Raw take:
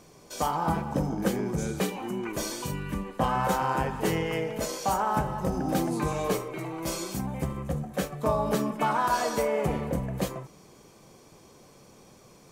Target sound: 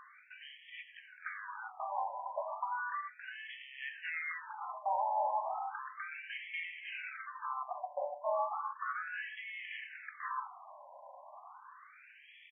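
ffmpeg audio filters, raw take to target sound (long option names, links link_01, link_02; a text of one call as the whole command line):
ffmpeg -i in.wav -af "highpass=frequency=550:poles=1,equalizer=frequency=9800:width=0.4:gain=-4,areverse,acompressor=threshold=-39dB:ratio=16,areverse,aecho=1:1:106:0.168,afftfilt=real='re*between(b*sr/1024,740*pow(2500/740,0.5+0.5*sin(2*PI*0.34*pts/sr))/1.41,740*pow(2500/740,0.5+0.5*sin(2*PI*0.34*pts/sr))*1.41)':imag='im*between(b*sr/1024,740*pow(2500/740,0.5+0.5*sin(2*PI*0.34*pts/sr))/1.41,740*pow(2500/740,0.5+0.5*sin(2*PI*0.34*pts/sr))*1.41)':win_size=1024:overlap=0.75,volume=11dB" out.wav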